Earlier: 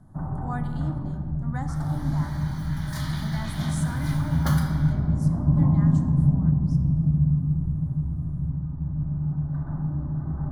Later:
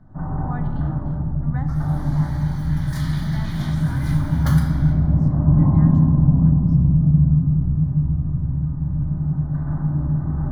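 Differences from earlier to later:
speech: add air absorption 190 m; first sound: send +9.0 dB; master: add bell 1900 Hz +2.5 dB 0.59 oct

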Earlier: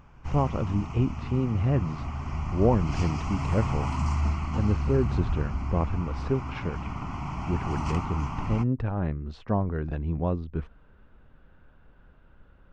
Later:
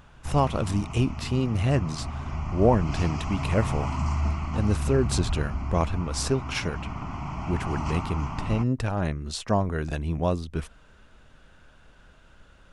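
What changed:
speech: remove tape spacing loss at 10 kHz 44 dB; master: add bell 640 Hz +4.5 dB 0.21 oct

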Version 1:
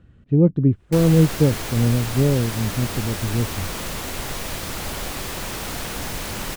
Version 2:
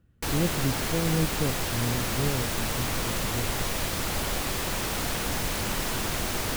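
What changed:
speech -12.0 dB; background: entry -0.70 s

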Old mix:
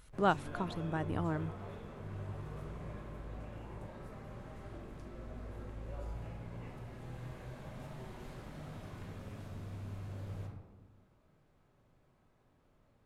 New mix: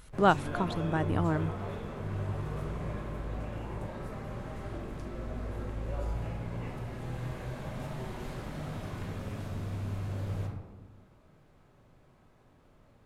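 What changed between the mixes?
speech +6.0 dB; background +8.5 dB

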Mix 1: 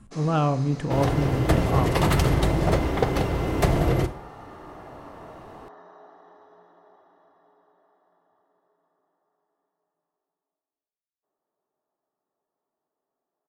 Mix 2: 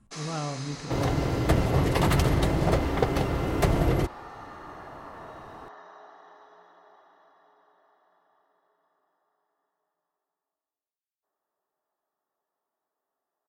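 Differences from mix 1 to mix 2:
speech -10.5 dB; first sound: add tilt shelf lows -7.5 dB, about 760 Hz; second sound: send off

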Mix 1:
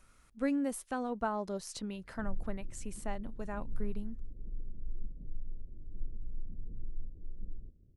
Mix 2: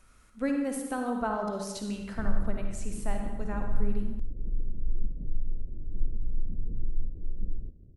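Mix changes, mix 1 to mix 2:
background +10.0 dB; reverb: on, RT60 1.1 s

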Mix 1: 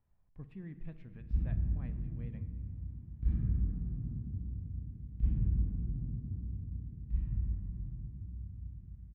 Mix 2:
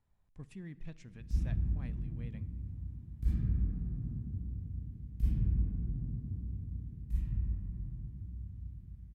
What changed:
speech: send -7.0 dB; master: remove air absorption 460 m

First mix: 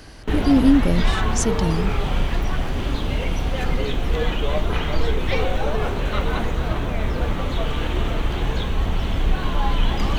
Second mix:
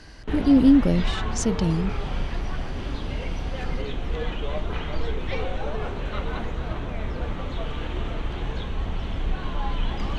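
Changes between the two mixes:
background -6.5 dB; master: add air absorption 63 m

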